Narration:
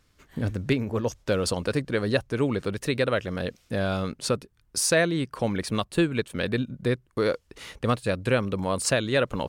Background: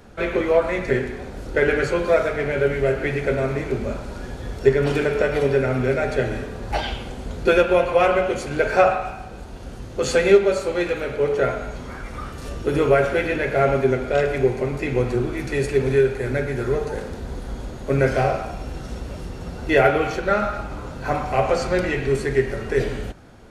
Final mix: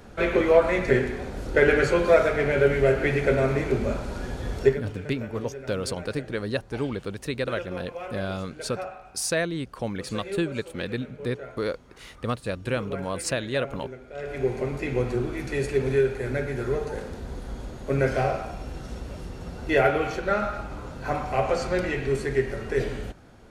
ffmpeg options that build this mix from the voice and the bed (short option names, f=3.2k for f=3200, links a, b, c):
-filter_complex "[0:a]adelay=4400,volume=-4dB[a];[1:a]volume=15dB,afade=t=out:st=4.6:d=0.21:silence=0.105925,afade=t=in:st=14.15:d=0.41:silence=0.177828[b];[a][b]amix=inputs=2:normalize=0"